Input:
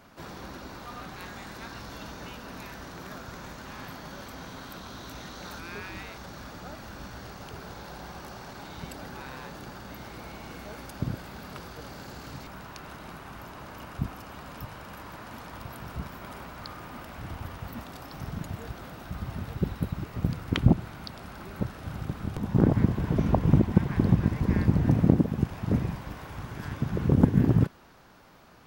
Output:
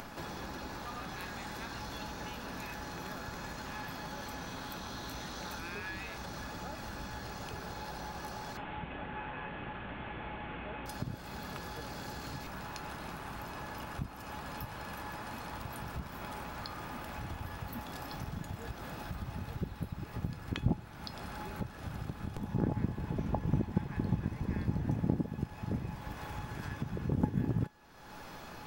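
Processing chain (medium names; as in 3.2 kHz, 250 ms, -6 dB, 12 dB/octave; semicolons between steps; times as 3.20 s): 8.57–10.86 s: one-bit delta coder 16 kbps, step -39 dBFS; feedback comb 840 Hz, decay 0.2 s, harmonics all, mix 80%; upward compressor, threshold -34 dBFS; trim +2.5 dB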